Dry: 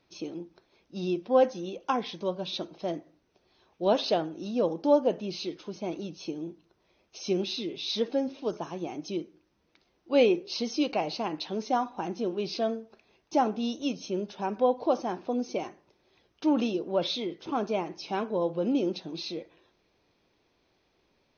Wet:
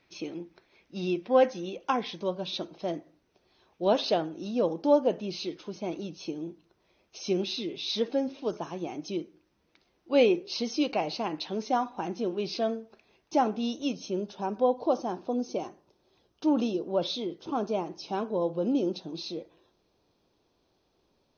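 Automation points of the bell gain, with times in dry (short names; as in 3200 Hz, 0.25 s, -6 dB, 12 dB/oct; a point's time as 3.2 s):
bell 2100 Hz 0.84 oct
1.4 s +8 dB
2.29 s +0.5 dB
13.78 s +0.5 dB
14.52 s -9.5 dB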